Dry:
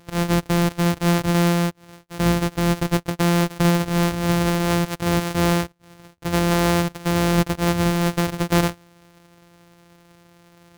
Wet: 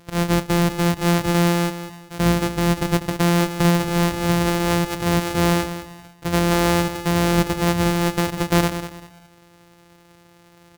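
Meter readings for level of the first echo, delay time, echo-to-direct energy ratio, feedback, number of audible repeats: −11.0 dB, 195 ms, −10.5 dB, 28%, 3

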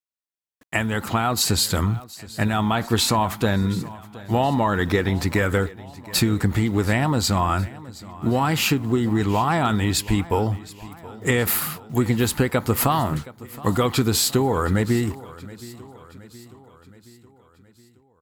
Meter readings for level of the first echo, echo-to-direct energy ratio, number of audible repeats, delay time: −19.0 dB, −17.5 dB, 4, 721 ms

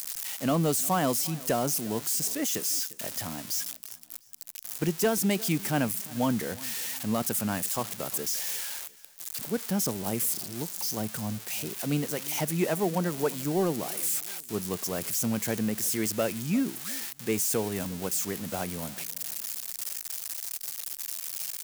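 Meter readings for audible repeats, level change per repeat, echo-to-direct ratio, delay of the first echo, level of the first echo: 2, −9.0 dB, −20.5 dB, 351 ms, −21.0 dB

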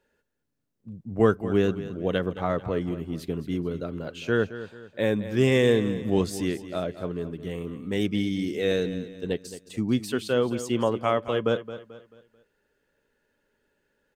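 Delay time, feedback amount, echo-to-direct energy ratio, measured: 219 ms, 39%, −13.0 dB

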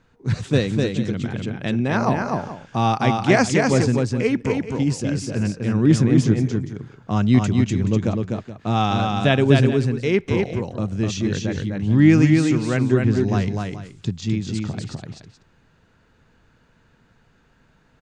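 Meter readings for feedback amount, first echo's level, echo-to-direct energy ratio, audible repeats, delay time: repeats not evenly spaced, −3.5 dB, −3.0 dB, 2, 252 ms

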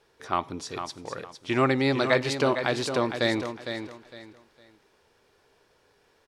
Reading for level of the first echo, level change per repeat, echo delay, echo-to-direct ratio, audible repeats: −8.5 dB, −11.5 dB, 457 ms, −8.0 dB, 3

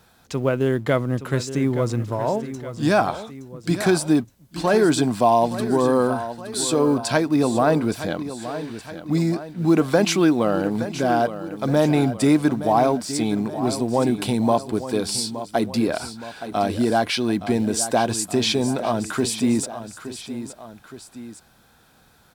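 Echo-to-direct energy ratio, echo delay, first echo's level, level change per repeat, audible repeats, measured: −11.0 dB, 869 ms, −12.0 dB, −5.5 dB, 2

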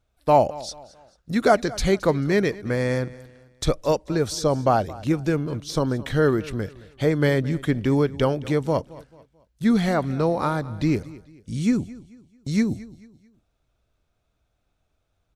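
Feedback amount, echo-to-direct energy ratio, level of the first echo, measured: 37%, −19.0 dB, −19.5 dB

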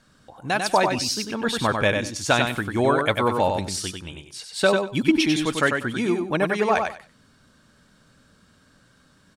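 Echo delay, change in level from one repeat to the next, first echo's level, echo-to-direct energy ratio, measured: 96 ms, −14.5 dB, −5.0 dB, −5.0 dB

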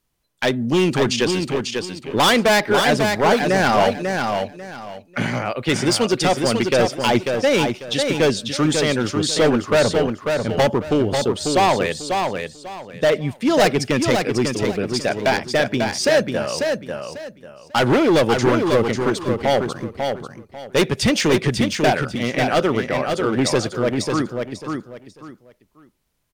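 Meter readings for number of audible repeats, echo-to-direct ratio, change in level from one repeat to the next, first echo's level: 3, −4.5 dB, −12.0 dB, −5.0 dB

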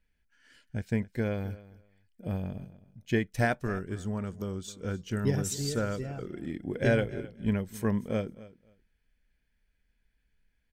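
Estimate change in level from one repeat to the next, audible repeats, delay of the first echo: −15.5 dB, 2, 263 ms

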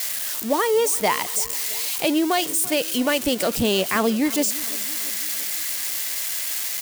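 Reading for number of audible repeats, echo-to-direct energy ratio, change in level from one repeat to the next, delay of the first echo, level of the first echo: 4, −17.5 dB, −5.0 dB, 337 ms, −19.0 dB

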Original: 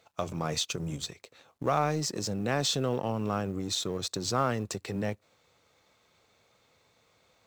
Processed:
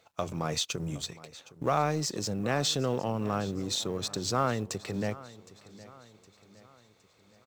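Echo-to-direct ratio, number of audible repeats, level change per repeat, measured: −18.0 dB, 3, −6.5 dB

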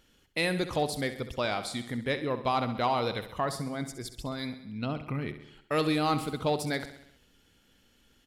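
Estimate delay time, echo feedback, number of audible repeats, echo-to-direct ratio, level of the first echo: 66 ms, 58%, 5, −10.0 dB, −12.0 dB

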